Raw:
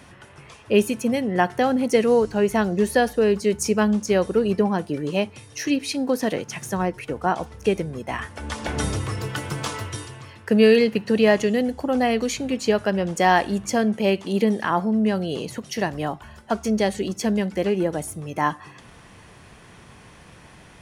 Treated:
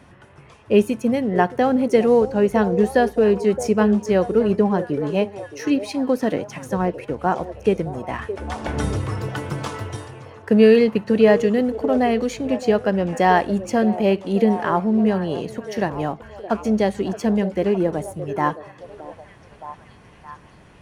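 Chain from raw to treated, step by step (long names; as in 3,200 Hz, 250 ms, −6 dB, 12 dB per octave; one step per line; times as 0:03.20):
high-shelf EQ 2,100 Hz −9.5 dB
in parallel at −7.5 dB: dead-zone distortion −38.5 dBFS
on the sum: echo through a band-pass that steps 618 ms, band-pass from 480 Hz, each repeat 0.7 octaves, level −9.5 dB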